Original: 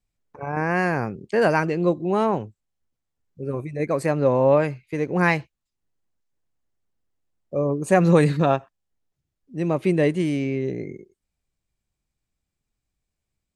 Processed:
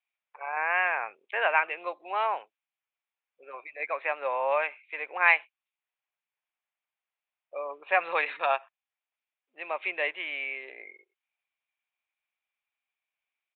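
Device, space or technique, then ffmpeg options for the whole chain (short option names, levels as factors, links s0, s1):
musical greeting card: -af "aresample=8000,aresample=44100,highpass=f=730:w=0.5412,highpass=f=730:w=1.3066,equalizer=f=2400:t=o:w=0.4:g=9,volume=0.841"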